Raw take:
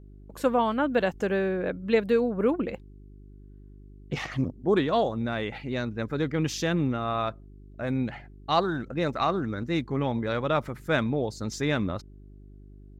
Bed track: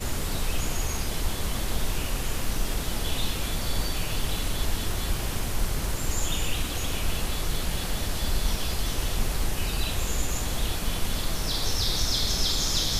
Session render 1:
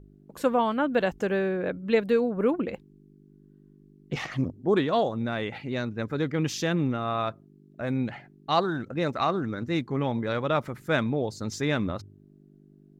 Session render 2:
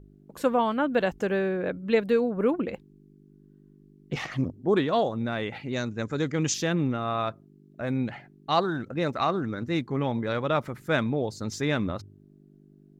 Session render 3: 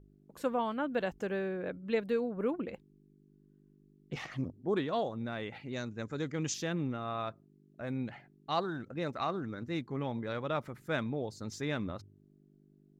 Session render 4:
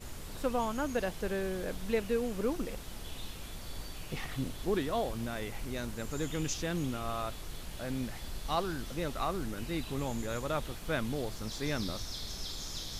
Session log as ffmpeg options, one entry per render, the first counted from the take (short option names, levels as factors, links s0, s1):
-af "bandreject=f=50:t=h:w=4,bandreject=f=100:t=h:w=4"
-filter_complex "[0:a]asettb=1/sr,asplit=3[s0][s1][s2];[s0]atrim=end=5.734[s3];[s1]atrim=start=5.73:end=6.54,asetpts=PTS-STARTPTS,afade=t=in:d=0.004:c=qsin,afade=t=out:st=0.806:d=0.004:c=qsin,lowpass=f=6900:t=q:w=5.4[s4];[s2]atrim=start=6.536[s5];[s3][s4]acrossfade=d=0.004:c1=hsin:c2=qsin[s6];[s6][s5]acrossfade=d=0.004:c1=qsin:c2=hsin"
-af "volume=0.376"
-filter_complex "[1:a]volume=0.178[s0];[0:a][s0]amix=inputs=2:normalize=0"